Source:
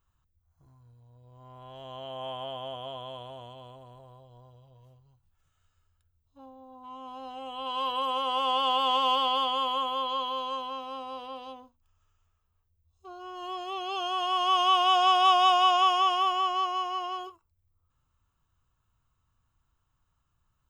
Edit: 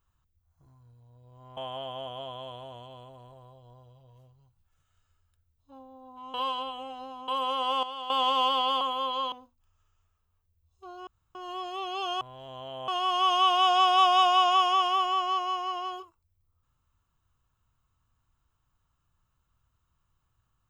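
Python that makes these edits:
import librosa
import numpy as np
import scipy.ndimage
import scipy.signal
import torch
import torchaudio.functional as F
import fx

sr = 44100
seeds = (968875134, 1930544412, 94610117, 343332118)

y = fx.edit(x, sr, fx.move(start_s=1.57, length_s=0.67, to_s=14.15),
    fx.reverse_span(start_s=7.01, length_s=0.94),
    fx.clip_gain(start_s=8.5, length_s=0.27, db=-11.5),
    fx.cut(start_s=9.48, length_s=0.29),
    fx.cut(start_s=10.28, length_s=1.26),
    fx.insert_room_tone(at_s=13.29, length_s=0.28), tone=tone)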